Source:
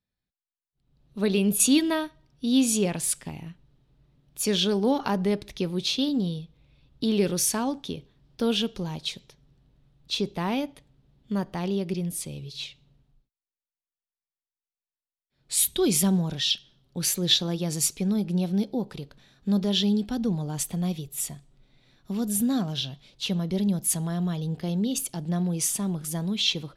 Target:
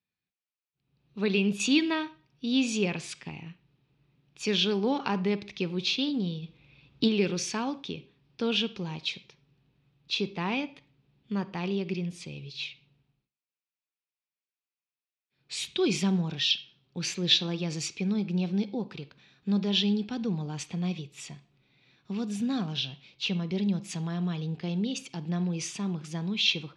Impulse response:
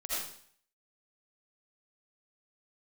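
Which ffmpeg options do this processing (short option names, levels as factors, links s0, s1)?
-filter_complex "[0:a]highpass=120,equalizer=f=250:t=q:w=4:g=-3,equalizer=f=610:t=q:w=4:g=-7,equalizer=f=2500:t=q:w=4:g=9,lowpass=f=5900:w=0.5412,lowpass=f=5900:w=1.3066,asplit=2[s0][s1];[1:a]atrim=start_sample=2205,asetrate=74970,aresample=44100,lowpass=3900[s2];[s1][s2]afir=irnorm=-1:irlink=0,volume=0.211[s3];[s0][s3]amix=inputs=2:normalize=0,asplit=3[s4][s5][s6];[s4]afade=t=out:st=6.42:d=0.02[s7];[s5]acontrast=73,afade=t=in:st=6.42:d=0.02,afade=t=out:st=7.07:d=0.02[s8];[s6]afade=t=in:st=7.07:d=0.02[s9];[s7][s8][s9]amix=inputs=3:normalize=0,volume=0.75"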